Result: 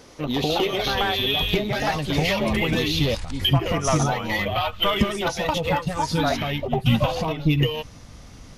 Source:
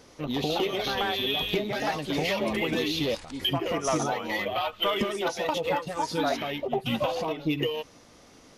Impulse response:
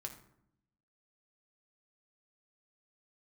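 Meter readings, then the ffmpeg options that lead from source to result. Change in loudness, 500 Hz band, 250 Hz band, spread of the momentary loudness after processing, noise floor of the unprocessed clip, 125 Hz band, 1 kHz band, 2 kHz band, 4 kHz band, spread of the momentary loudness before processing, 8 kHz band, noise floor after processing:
+5.5 dB, +3.0 dB, +6.0 dB, 4 LU, -54 dBFS, +13.5 dB, +4.5 dB, +5.5 dB, +5.5 dB, 4 LU, +5.5 dB, -44 dBFS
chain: -af "asubboost=boost=7.5:cutoff=130,volume=5.5dB"

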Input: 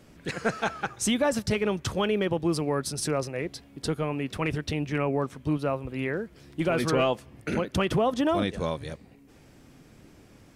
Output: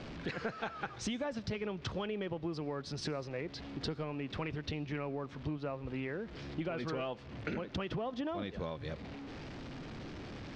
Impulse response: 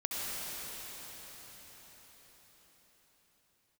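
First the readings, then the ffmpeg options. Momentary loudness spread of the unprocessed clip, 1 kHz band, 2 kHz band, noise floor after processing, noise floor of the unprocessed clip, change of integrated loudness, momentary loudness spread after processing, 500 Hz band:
9 LU, -11.5 dB, -10.5 dB, -50 dBFS, -55 dBFS, -11.5 dB, 8 LU, -11.5 dB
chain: -filter_complex "[0:a]aeval=exprs='val(0)+0.5*0.00794*sgn(val(0))':c=same,lowpass=f=4.8k:w=0.5412,lowpass=f=4.8k:w=1.3066,acompressor=threshold=-35dB:ratio=6,asplit=2[a][b];[1:a]atrim=start_sample=2205,afade=t=out:st=0.23:d=0.01,atrim=end_sample=10584[c];[b][c]afir=irnorm=-1:irlink=0,volume=-23.5dB[d];[a][d]amix=inputs=2:normalize=0,volume=-1dB"

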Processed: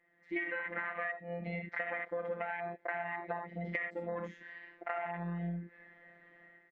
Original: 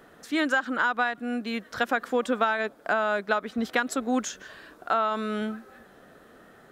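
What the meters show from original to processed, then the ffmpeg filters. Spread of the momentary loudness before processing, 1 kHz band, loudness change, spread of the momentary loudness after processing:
9 LU, -13.5 dB, -11.5 dB, 15 LU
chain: -filter_complex "[0:a]dynaudnorm=f=100:g=7:m=13dB,lowshelf=f=130:g=-7.5,bandreject=f=50:t=h:w=6,bandreject=f=100:t=h:w=6,bandreject=f=150:t=h:w=6,bandreject=f=200:t=h:w=6,bandreject=f=250:t=h:w=6,bandreject=f=300:t=h:w=6,bandreject=f=350:t=h:w=6,bandreject=f=400:t=h:w=6,bandreject=f=450:t=h:w=6,bandreject=f=500:t=h:w=6,asplit=2[a][b];[b]adelay=32,volume=-9.5dB[c];[a][c]amix=inputs=2:normalize=0,aecho=1:1:56|74:0.473|0.355,afwtdn=0.141,afftfilt=real='hypot(re,im)*cos(PI*b)':imag='0':win_size=1024:overlap=0.75,lowpass=f=2k:t=q:w=15,alimiter=limit=-4.5dB:level=0:latency=1:release=239,equalizer=f=1.4k:w=2:g=-11.5,acompressor=threshold=-32dB:ratio=6,volume=-3.5dB"

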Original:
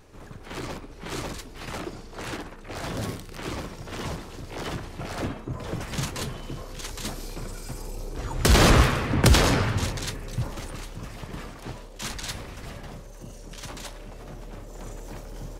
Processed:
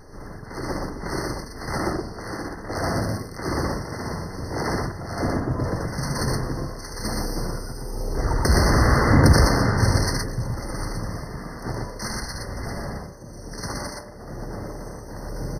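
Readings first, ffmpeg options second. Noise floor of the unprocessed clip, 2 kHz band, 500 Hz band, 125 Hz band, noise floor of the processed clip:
-43 dBFS, +2.5 dB, +4.0 dB, +4.5 dB, -39 dBFS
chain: -filter_complex "[0:a]alimiter=limit=-13.5dB:level=0:latency=1:release=194,tremolo=f=1.1:d=0.57,asplit=2[a][b];[b]aecho=0:1:75.8|119.5:0.501|0.794[c];[a][c]amix=inputs=2:normalize=0,afftfilt=real='re*eq(mod(floor(b*sr/1024/2100),2),0)':imag='im*eq(mod(floor(b*sr/1024/2100),2),0)':win_size=1024:overlap=0.75,volume=7.5dB"

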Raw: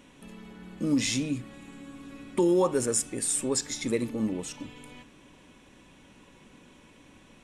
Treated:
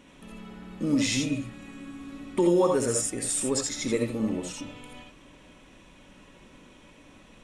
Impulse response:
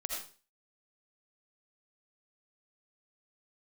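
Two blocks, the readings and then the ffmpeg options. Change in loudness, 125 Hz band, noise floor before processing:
+1.0 dB, +2.0 dB, -56 dBFS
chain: -filter_complex "[0:a]highshelf=f=7.8k:g=-5[a];[1:a]atrim=start_sample=2205,atrim=end_sample=3969[b];[a][b]afir=irnorm=-1:irlink=0,volume=2.5dB"

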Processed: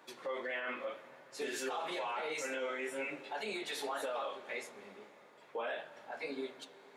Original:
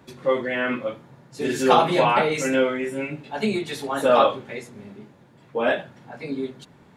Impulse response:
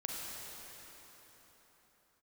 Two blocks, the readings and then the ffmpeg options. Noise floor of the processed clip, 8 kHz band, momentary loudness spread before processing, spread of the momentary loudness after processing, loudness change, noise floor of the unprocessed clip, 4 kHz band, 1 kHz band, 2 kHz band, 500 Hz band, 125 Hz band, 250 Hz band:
-60 dBFS, -10.5 dB, 19 LU, 13 LU, -17.0 dB, -53 dBFS, -13.0 dB, -18.5 dB, -12.5 dB, -17.5 dB, -30.5 dB, -21.0 dB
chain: -filter_complex "[0:a]highpass=530,acompressor=threshold=-30dB:ratio=2,alimiter=level_in=3dB:limit=-24dB:level=0:latency=1:release=53,volume=-3dB,flanger=delay=5.6:depth=6.5:regen=74:speed=1.7:shape=triangular,asplit=2[a][b];[1:a]atrim=start_sample=2205,lowpass=6.2k[c];[b][c]afir=irnorm=-1:irlink=0,volume=-15dB[d];[a][d]amix=inputs=2:normalize=0"

